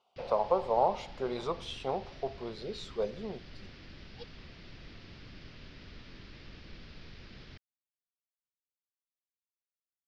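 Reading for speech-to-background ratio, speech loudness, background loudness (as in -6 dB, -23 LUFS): 17.0 dB, -34.0 LUFS, -51.0 LUFS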